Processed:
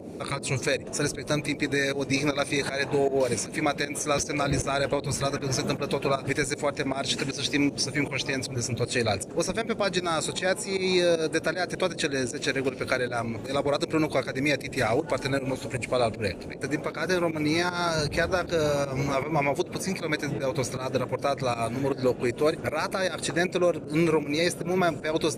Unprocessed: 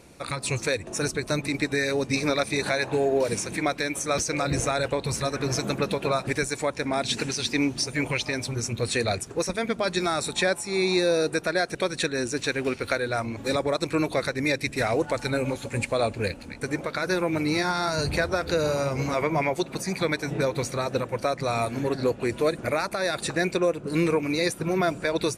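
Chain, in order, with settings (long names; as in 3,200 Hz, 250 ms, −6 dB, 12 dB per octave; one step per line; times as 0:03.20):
fake sidechain pumping 156 BPM, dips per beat 1, −16 dB, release 161 ms
noise in a band 96–540 Hz −40 dBFS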